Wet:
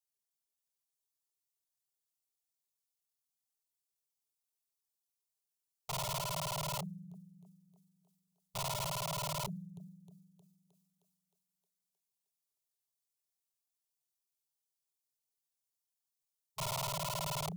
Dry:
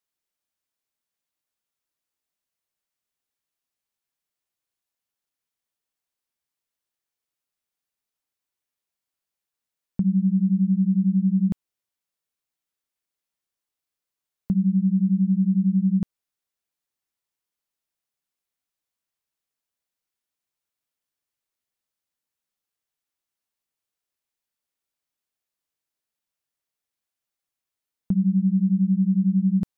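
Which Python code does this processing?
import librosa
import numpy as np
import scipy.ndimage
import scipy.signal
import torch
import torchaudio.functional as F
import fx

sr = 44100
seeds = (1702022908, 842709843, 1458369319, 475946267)

y = fx.spec_quant(x, sr, step_db=15)
y = fx.stretch_grains(y, sr, factor=0.59, grain_ms=48.0)
y = fx.peak_eq(y, sr, hz=400.0, db=11.0, octaves=0.48)
y = fx.env_flanger(y, sr, rest_ms=7.7, full_db=-20.5)
y = fx.bass_treble(y, sr, bass_db=2, treble_db=8)
y = fx.echo_thinned(y, sr, ms=311, feedback_pct=66, hz=230.0, wet_db=-6)
y = (np.mod(10.0 ** (23.5 / 20.0) * y + 1.0, 2.0) - 1.0) / 10.0 ** (23.5 / 20.0)
y = scipy.signal.sosfilt(scipy.signal.ellip(3, 1.0, 40, [170.0, 430.0], 'bandstop', fs=sr, output='sos'), y)
y = fx.fixed_phaser(y, sr, hz=330.0, stages=8)
y = fx.sustainer(y, sr, db_per_s=51.0)
y = F.gain(torch.from_numpy(y), -5.0).numpy()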